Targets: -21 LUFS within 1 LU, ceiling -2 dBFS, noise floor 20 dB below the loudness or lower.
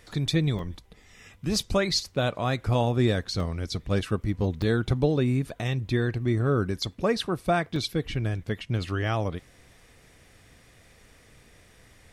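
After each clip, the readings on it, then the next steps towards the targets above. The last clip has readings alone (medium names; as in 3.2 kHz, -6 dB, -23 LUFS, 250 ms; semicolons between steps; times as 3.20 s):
dropouts 4; longest dropout 2.4 ms; loudness -27.0 LUFS; peak level -11.0 dBFS; loudness target -21.0 LUFS
-> interpolate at 0.59/3.40/4.62/7.76 s, 2.4 ms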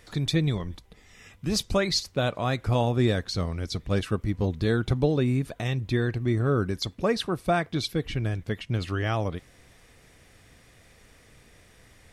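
dropouts 0; loudness -27.0 LUFS; peak level -11.0 dBFS; loudness target -21.0 LUFS
-> trim +6 dB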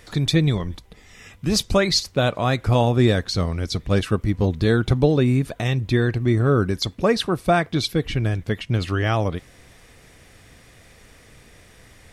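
loudness -21.0 LUFS; peak level -5.0 dBFS; noise floor -51 dBFS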